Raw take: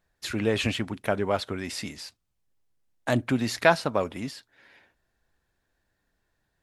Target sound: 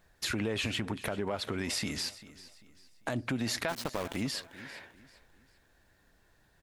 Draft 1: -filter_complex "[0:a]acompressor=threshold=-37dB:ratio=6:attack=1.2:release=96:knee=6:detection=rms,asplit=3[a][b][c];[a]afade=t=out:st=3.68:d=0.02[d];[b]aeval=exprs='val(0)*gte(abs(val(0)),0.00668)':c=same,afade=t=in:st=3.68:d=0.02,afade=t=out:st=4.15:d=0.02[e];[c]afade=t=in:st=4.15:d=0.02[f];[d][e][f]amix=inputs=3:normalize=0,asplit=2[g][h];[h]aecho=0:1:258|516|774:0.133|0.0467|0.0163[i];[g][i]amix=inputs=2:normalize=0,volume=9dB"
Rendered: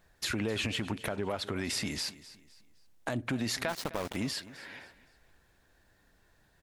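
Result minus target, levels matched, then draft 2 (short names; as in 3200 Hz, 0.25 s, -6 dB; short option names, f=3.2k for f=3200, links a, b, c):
echo 0.136 s early
-filter_complex "[0:a]acompressor=threshold=-37dB:ratio=6:attack=1.2:release=96:knee=6:detection=rms,asplit=3[a][b][c];[a]afade=t=out:st=3.68:d=0.02[d];[b]aeval=exprs='val(0)*gte(abs(val(0)),0.00668)':c=same,afade=t=in:st=3.68:d=0.02,afade=t=out:st=4.15:d=0.02[e];[c]afade=t=in:st=4.15:d=0.02[f];[d][e][f]amix=inputs=3:normalize=0,asplit=2[g][h];[h]aecho=0:1:394|788|1182:0.133|0.0467|0.0163[i];[g][i]amix=inputs=2:normalize=0,volume=9dB"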